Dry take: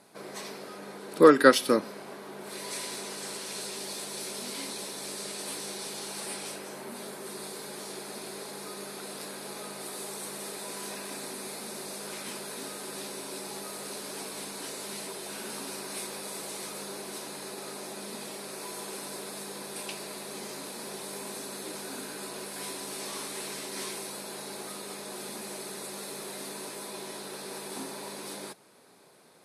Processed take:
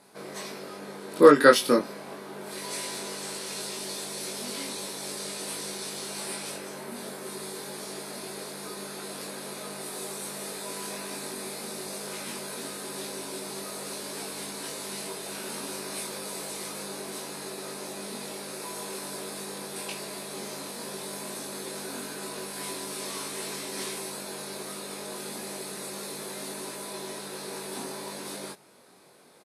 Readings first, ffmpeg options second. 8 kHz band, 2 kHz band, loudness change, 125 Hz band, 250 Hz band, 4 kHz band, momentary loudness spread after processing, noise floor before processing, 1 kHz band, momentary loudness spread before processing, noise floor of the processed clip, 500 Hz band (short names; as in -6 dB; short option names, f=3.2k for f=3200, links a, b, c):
+2.0 dB, +2.0 dB, +2.0 dB, +3.0 dB, +1.5 dB, +2.0 dB, 4 LU, -44 dBFS, +2.0 dB, 4 LU, -41 dBFS, +2.5 dB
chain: -filter_complex "[0:a]asplit=2[a][b];[b]adelay=21,volume=-2.5dB[c];[a][c]amix=inputs=2:normalize=0"